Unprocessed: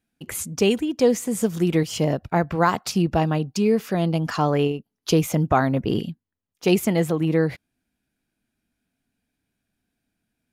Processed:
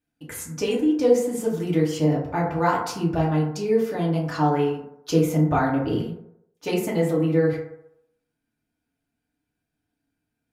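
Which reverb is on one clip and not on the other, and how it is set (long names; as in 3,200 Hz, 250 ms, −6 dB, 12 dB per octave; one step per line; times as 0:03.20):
feedback delay network reverb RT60 0.78 s, low-frequency decay 0.75×, high-frequency decay 0.35×, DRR −5 dB
level −8.5 dB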